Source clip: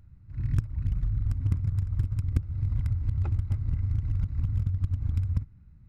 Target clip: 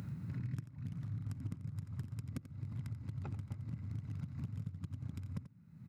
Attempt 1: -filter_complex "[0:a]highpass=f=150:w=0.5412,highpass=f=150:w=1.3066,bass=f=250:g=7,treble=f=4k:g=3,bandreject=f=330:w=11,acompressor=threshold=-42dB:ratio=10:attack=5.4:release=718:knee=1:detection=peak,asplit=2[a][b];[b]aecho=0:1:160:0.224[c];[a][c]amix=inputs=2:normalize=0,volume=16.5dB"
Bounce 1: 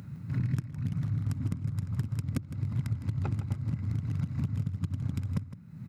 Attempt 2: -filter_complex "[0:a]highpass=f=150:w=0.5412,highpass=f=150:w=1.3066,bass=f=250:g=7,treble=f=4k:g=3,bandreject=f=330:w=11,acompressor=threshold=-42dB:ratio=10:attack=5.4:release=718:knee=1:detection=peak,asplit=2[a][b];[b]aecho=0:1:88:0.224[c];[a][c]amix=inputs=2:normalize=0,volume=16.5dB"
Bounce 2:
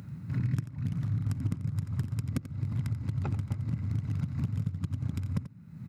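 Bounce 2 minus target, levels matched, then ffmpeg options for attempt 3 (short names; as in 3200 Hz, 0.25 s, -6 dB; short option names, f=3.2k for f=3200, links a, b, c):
compressor: peak gain reduction -11 dB
-filter_complex "[0:a]highpass=f=150:w=0.5412,highpass=f=150:w=1.3066,bass=f=250:g=7,treble=f=4k:g=3,bandreject=f=330:w=11,acompressor=threshold=-54dB:ratio=10:attack=5.4:release=718:knee=1:detection=peak,asplit=2[a][b];[b]aecho=0:1:88:0.224[c];[a][c]amix=inputs=2:normalize=0,volume=16.5dB"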